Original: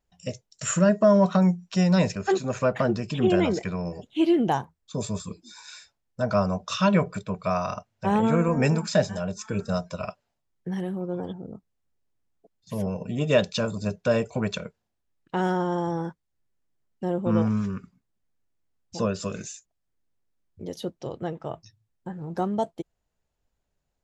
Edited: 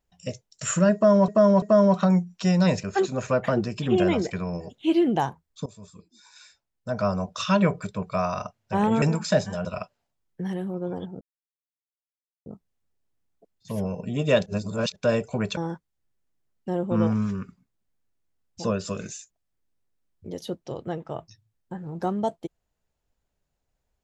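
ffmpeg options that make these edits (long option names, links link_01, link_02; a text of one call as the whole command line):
ffmpeg -i in.wav -filter_complex "[0:a]asplit=10[link_01][link_02][link_03][link_04][link_05][link_06][link_07][link_08][link_09][link_10];[link_01]atrim=end=1.282[link_11];[link_02]atrim=start=0.938:end=1.282[link_12];[link_03]atrim=start=0.938:end=4.98,asetpts=PTS-STARTPTS,afade=type=out:start_time=4.038:duration=0.004:curve=hsin:silence=0.0944061[link_13];[link_04]atrim=start=4.98:end=8.342,asetpts=PTS-STARTPTS,afade=type=in:duration=1.79:silence=0.0944061[link_14];[link_05]atrim=start=8.648:end=9.282[link_15];[link_06]atrim=start=9.918:end=11.48,asetpts=PTS-STARTPTS,afade=type=out:start_time=1.558:duration=0.004:curve=hsin,apad=pad_dur=1.25[link_16];[link_07]atrim=start=11.48:end=13.482,asetpts=PTS-STARTPTS,afade=type=in:duration=0.004:curve=hsin[link_17];[link_08]atrim=start=13.478:end=13.982,asetpts=PTS-STARTPTS,areverse[link_18];[link_09]atrim=start=13.978:end=14.592[link_19];[link_10]atrim=start=15.918[link_20];[link_11][link_12]acrossfade=duration=0.004:curve1=hsin:curve2=hsin[link_21];[link_13][link_14]concat=n=2:v=0:a=1[link_22];[link_21][link_22]acrossfade=duration=0.004:curve1=hsin:curve2=hsin[link_23];[link_23][link_15]acrossfade=duration=0.004:curve1=hsin:curve2=hsin[link_24];[link_16][link_17]concat=n=2:v=0:a=1[link_25];[link_24][link_25]acrossfade=duration=0.004:curve1=hsin:curve2=hsin[link_26];[link_26][link_18]acrossfade=duration=0.004:curve1=hsin:curve2=hsin[link_27];[link_27][link_19]acrossfade=duration=0.004:curve1=hsin:curve2=hsin[link_28];[link_28][link_20]acrossfade=duration=0.004:curve1=hsin:curve2=hsin" out.wav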